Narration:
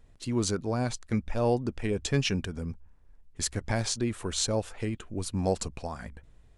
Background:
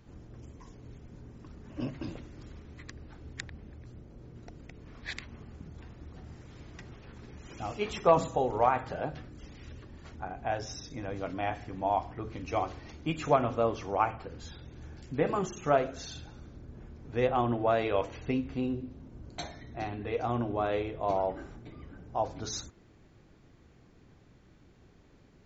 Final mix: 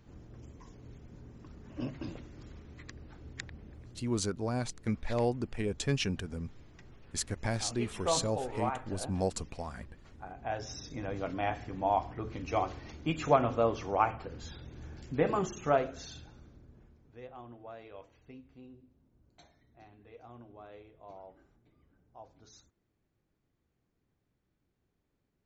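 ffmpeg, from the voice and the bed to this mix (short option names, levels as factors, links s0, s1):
-filter_complex "[0:a]adelay=3750,volume=0.631[s0];[1:a]volume=2.11,afade=t=out:st=3.77:d=0.45:silence=0.473151,afade=t=in:st=10.14:d=0.83:silence=0.375837,afade=t=out:st=15.36:d=1.84:silence=0.0944061[s1];[s0][s1]amix=inputs=2:normalize=0"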